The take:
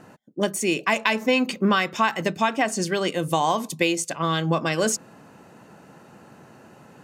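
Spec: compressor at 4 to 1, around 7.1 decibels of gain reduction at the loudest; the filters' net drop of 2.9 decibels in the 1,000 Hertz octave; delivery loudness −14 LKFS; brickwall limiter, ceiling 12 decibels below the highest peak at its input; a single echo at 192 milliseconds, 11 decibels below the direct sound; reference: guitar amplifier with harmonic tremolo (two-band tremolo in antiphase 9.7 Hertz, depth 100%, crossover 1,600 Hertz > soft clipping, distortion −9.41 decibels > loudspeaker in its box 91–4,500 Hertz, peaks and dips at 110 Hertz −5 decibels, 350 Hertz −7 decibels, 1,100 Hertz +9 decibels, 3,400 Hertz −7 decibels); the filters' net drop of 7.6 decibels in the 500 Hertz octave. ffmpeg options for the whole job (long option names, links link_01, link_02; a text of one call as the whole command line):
ffmpeg -i in.wav -filter_complex "[0:a]equalizer=frequency=500:width_type=o:gain=-5.5,equalizer=frequency=1000:width_type=o:gain=-8.5,acompressor=threshold=-27dB:ratio=4,alimiter=limit=-23dB:level=0:latency=1,aecho=1:1:192:0.282,acrossover=split=1600[link_01][link_02];[link_01]aeval=exprs='val(0)*(1-1/2+1/2*cos(2*PI*9.7*n/s))':channel_layout=same[link_03];[link_02]aeval=exprs='val(0)*(1-1/2-1/2*cos(2*PI*9.7*n/s))':channel_layout=same[link_04];[link_03][link_04]amix=inputs=2:normalize=0,asoftclip=threshold=-35dB,highpass=91,equalizer=frequency=110:width_type=q:width=4:gain=-5,equalizer=frequency=350:width_type=q:width=4:gain=-7,equalizer=frequency=1100:width_type=q:width=4:gain=9,equalizer=frequency=3400:width_type=q:width=4:gain=-7,lowpass=frequency=4500:width=0.5412,lowpass=frequency=4500:width=1.3066,volume=28.5dB" out.wav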